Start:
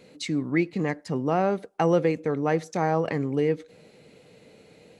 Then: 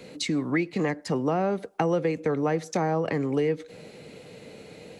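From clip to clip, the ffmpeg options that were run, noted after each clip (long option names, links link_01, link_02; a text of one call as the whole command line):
ffmpeg -i in.wav -filter_complex "[0:a]acrossover=split=210|450[link_01][link_02][link_03];[link_01]acompressor=threshold=-43dB:ratio=4[link_04];[link_02]acompressor=threshold=-38dB:ratio=4[link_05];[link_03]acompressor=threshold=-36dB:ratio=4[link_06];[link_04][link_05][link_06]amix=inputs=3:normalize=0,volume=7.5dB" out.wav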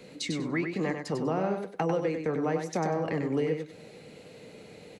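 ffmpeg -i in.wav -af "flanger=delay=4.4:depth=9.2:regen=-68:speed=1.1:shape=triangular,asoftclip=type=hard:threshold=-18dB,aecho=1:1:97|194|291:0.501|0.1|0.02" out.wav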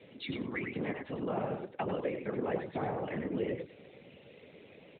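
ffmpeg -i in.wav -af "crystalizer=i=3.5:c=0,afftfilt=real='hypot(re,im)*cos(2*PI*random(0))':imag='hypot(re,im)*sin(2*PI*random(1))':win_size=512:overlap=0.75" -ar 8000 -c:a libopencore_amrnb -b:a 12200 out.amr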